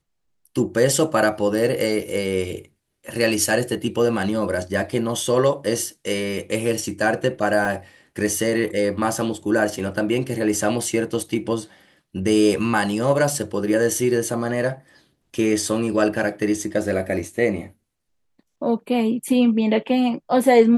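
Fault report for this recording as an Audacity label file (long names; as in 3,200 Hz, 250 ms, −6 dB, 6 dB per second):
7.650000	7.650000	drop-out 2.5 ms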